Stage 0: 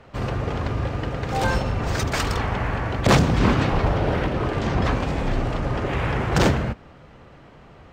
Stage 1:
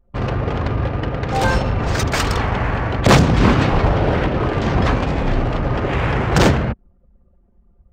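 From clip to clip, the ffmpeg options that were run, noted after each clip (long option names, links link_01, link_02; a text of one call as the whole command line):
ffmpeg -i in.wav -af "anlmdn=6.31,volume=5dB" out.wav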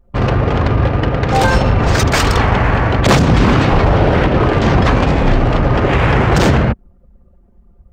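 ffmpeg -i in.wav -af "alimiter=level_in=8.5dB:limit=-1dB:release=50:level=0:latency=1,volume=-1.5dB" out.wav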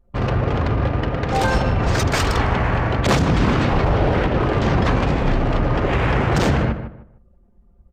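ffmpeg -i in.wav -filter_complex "[0:a]asplit=2[link_01][link_02];[link_02]adelay=153,lowpass=frequency=1800:poles=1,volume=-9.5dB,asplit=2[link_03][link_04];[link_04]adelay=153,lowpass=frequency=1800:poles=1,volume=0.27,asplit=2[link_05][link_06];[link_06]adelay=153,lowpass=frequency=1800:poles=1,volume=0.27[link_07];[link_03][link_05][link_07]amix=inputs=3:normalize=0[link_08];[link_01][link_08]amix=inputs=2:normalize=0,aresample=32000,aresample=44100,volume=-6.5dB" out.wav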